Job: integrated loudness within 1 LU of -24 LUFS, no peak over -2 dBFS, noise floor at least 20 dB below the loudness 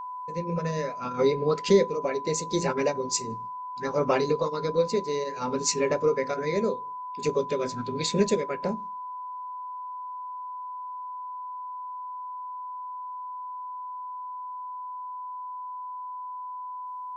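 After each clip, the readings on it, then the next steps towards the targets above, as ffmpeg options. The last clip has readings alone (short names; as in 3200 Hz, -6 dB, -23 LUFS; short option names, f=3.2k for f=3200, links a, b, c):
steady tone 1000 Hz; tone level -34 dBFS; loudness -29.5 LUFS; peak -9.0 dBFS; loudness target -24.0 LUFS
-> -af "bandreject=f=1k:w=30"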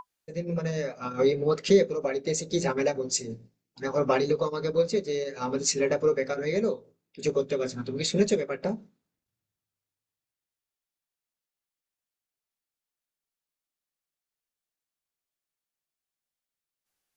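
steady tone none; loudness -27.5 LUFS; peak -8.5 dBFS; loudness target -24.0 LUFS
-> -af "volume=3.5dB"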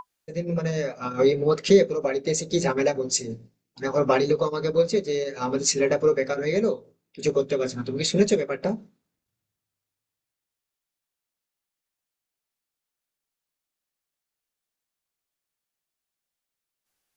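loudness -24.0 LUFS; peak -5.0 dBFS; noise floor -87 dBFS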